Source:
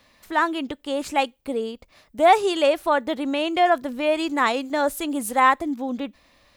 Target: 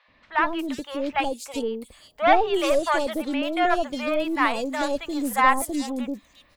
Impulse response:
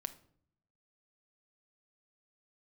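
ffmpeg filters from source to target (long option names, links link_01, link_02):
-filter_complex "[0:a]aeval=exprs='0.631*(cos(1*acos(clip(val(0)/0.631,-1,1)))-cos(1*PI/2))+0.0562*(cos(6*acos(clip(val(0)/0.631,-1,1)))-cos(6*PI/2))':channel_layout=same,acrossover=split=670|3700[link_01][link_02][link_03];[link_01]adelay=80[link_04];[link_03]adelay=360[link_05];[link_04][link_02][link_05]amix=inputs=3:normalize=0"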